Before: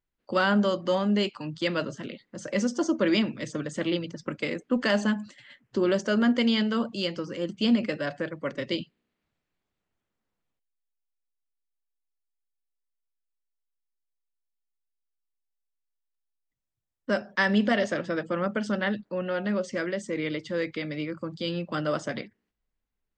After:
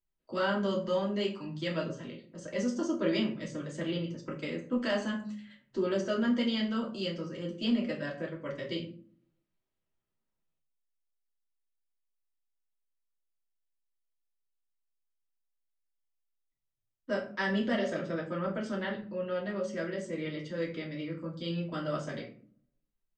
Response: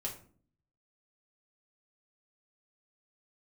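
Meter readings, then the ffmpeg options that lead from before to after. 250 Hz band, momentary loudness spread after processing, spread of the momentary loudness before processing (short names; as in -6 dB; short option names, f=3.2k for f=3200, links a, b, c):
-6.0 dB, 9 LU, 10 LU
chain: -filter_complex "[1:a]atrim=start_sample=2205[a];[0:a][a]afir=irnorm=-1:irlink=0,volume=-7dB"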